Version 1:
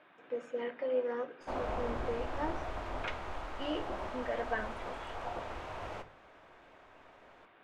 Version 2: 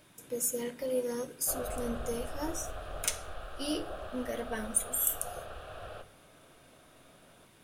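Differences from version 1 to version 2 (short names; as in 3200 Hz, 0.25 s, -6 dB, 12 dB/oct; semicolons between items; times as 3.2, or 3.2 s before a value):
speech: remove speaker cabinet 330–2800 Hz, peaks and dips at 750 Hz +6 dB, 1200 Hz +5 dB, 1700 Hz +4 dB; background: add fixed phaser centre 1400 Hz, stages 8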